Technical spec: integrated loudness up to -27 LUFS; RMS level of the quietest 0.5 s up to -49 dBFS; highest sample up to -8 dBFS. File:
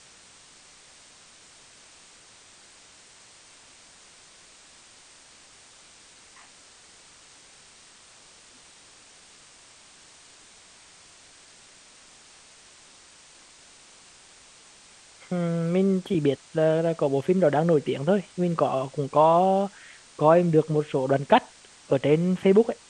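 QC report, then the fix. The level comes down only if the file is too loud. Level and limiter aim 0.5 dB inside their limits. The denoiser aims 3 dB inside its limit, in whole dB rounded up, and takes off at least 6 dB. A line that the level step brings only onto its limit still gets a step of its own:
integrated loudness -23.0 LUFS: fail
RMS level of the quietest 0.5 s -52 dBFS: OK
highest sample -5.0 dBFS: fail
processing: gain -4.5 dB

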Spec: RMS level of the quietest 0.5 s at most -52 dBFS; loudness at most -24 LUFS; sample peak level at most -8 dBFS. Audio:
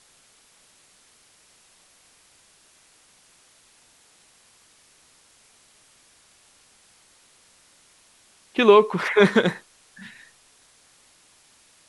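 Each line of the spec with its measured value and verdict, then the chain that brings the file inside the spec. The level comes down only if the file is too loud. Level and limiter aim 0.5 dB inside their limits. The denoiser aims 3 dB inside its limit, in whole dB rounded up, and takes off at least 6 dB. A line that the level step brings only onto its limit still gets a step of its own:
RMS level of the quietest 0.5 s -58 dBFS: OK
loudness -18.5 LUFS: fail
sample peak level -2.5 dBFS: fail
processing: gain -6 dB

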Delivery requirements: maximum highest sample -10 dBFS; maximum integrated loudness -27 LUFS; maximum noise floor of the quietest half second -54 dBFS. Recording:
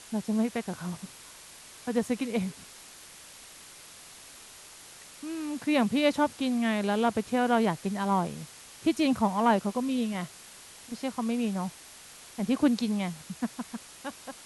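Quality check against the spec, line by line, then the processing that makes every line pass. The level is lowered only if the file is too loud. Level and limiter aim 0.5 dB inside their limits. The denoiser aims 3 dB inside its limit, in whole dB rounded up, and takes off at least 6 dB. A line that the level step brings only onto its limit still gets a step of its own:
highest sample -12.5 dBFS: OK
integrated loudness -29.0 LUFS: OK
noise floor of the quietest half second -49 dBFS: fail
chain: denoiser 8 dB, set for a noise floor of -49 dBFS

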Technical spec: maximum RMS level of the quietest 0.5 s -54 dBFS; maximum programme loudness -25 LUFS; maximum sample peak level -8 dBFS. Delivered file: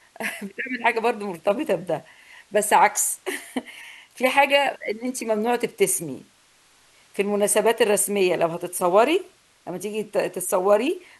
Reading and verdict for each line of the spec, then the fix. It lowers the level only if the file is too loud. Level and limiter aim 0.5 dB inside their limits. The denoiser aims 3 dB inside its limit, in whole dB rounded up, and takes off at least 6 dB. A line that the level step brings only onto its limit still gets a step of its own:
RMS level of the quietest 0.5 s -58 dBFS: OK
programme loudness -22.5 LUFS: fail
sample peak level -3.5 dBFS: fail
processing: gain -3 dB; limiter -8.5 dBFS

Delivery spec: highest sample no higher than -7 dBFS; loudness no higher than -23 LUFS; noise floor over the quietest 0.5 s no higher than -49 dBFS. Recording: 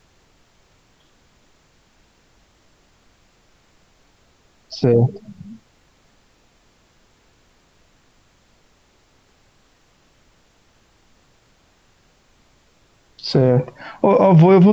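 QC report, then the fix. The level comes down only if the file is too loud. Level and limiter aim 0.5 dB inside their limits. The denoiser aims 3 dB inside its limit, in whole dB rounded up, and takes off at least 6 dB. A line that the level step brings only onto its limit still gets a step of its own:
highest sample -4.5 dBFS: fail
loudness -15.5 LUFS: fail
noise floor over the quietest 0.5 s -58 dBFS: OK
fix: gain -8 dB

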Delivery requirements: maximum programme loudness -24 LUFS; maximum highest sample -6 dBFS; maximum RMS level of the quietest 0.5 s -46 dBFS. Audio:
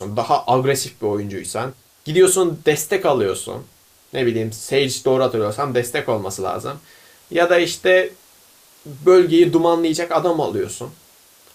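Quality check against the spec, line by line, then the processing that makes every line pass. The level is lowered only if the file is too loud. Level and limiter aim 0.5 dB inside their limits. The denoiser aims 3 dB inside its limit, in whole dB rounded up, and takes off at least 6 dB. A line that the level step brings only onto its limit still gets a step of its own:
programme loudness -18.5 LUFS: fail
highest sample -4.0 dBFS: fail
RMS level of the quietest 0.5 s -51 dBFS: OK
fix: gain -6 dB

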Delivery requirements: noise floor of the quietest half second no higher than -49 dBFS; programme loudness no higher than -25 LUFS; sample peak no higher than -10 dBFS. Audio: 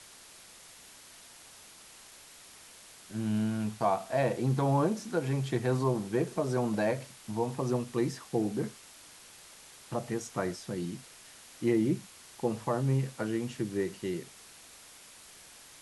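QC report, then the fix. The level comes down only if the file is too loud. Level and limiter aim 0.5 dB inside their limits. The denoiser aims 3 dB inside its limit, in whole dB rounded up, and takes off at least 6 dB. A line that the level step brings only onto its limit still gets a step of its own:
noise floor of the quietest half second -53 dBFS: OK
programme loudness -32.0 LUFS: OK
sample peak -15.0 dBFS: OK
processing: none

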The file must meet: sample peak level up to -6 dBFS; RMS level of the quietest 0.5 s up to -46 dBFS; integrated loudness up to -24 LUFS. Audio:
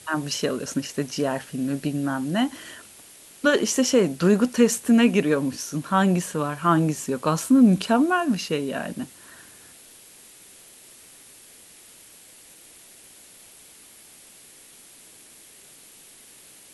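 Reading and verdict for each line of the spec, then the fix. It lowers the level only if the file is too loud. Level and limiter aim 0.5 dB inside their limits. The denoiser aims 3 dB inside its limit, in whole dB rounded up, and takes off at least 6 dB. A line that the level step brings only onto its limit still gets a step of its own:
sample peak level -6.5 dBFS: OK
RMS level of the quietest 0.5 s -49 dBFS: OK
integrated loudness -22.5 LUFS: fail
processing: gain -2 dB

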